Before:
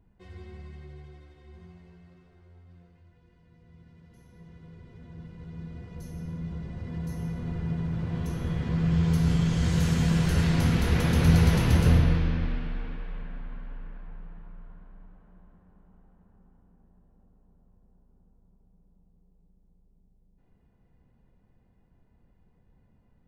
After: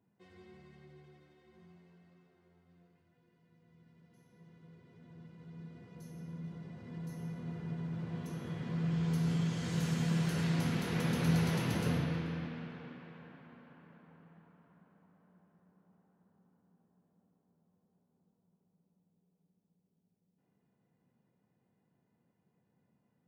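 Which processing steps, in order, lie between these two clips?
high-pass filter 130 Hz 24 dB per octave
on a send: tape delay 436 ms, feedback 58%, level −13.5 dB, low-pass 2,700 Hz
on the sum: level −7.5 dB

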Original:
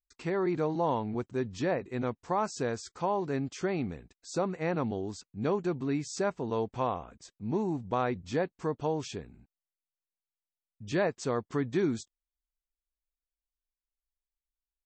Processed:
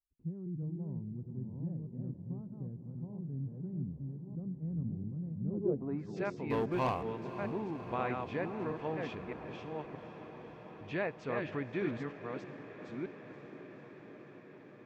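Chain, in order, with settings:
delay that plays each chunk backwards 622 ms, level −3.5 dB
low-pass filter sweep 160 Hz → 2,500 Hz, 0:05.44–0:06.18
0:06.50–0:07.03: leveller curve on the samples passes 2
on a send: feedback delay with all-pass diffusion 540 ms, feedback 78%, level −12.5 dB
on the sum: level −8 dB

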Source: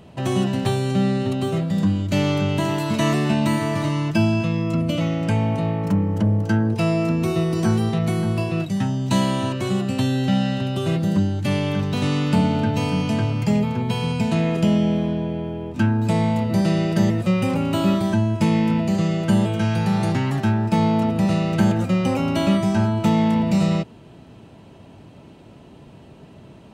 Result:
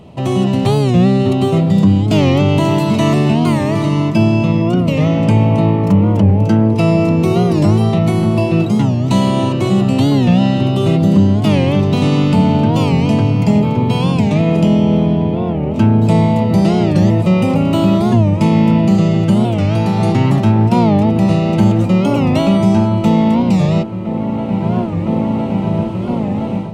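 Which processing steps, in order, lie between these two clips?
in parallel at +3 dB: brickwall limiter −14 dBFS, peak gain reduction 7 dB
on the sum: parametric band 1,600 Hz −12 dB 0.33 octaves
on a send: delay with a low-pass on its return 1,013 ms, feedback 72%, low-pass 1,900 Hz, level −12 dB
on the sum: automatic gain control gain up to 11.5 dB
high-shelf EQ 3,900 Hz −6.5 dB
wow of a warped record 45 rpm, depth 160 cents
level −1 dB

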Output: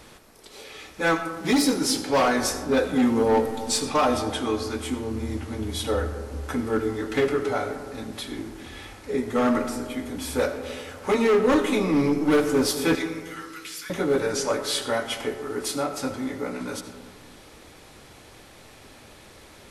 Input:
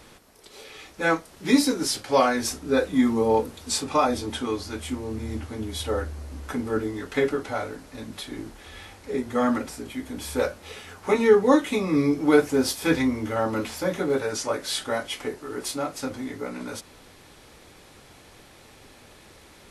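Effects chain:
0:12.95–0:13.90: Bessel high-pass filter 2,300 Hz, order 8
hard clipping −17.5 dBFS, distortion −10 dB
convolution reverb RT60 1.8 s, pre-delay 40 ms, DRR 8.5 dB
level +1.5 dB

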